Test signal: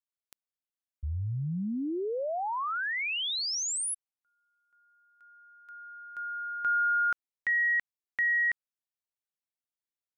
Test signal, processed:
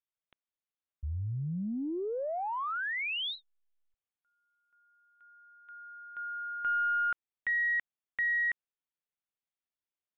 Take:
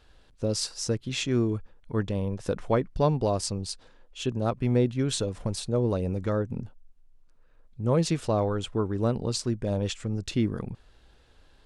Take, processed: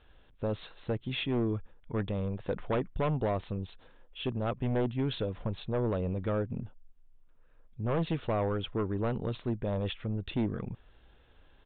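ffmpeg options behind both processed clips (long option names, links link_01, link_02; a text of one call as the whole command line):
ffmpeg -i in.wav -af "aeval=exprs='0.266*(cos(1*acos(clip(val(0)/0.266,-1,1)))-cos(1*PI/2))+0.075*(cos(2*acos(clip(val(0)/0.266,-1,1)))-cos(2*PI/2))+0.0668*(cos(5*acos(clip(val(0)/0.266,-1,1)))-cos(5*PI/2))+0.00211*(cos(6*acos(clip(val(0)/0.266,-1,1)))-cos(6*PI/2))+0.00422*(cos(8*acos(clip(val(0)/0.266,-1,1)))-cos(8*PI/2))':channel_layout=same,aresample=8000,aresample=44100,volume=-9dB" out.wav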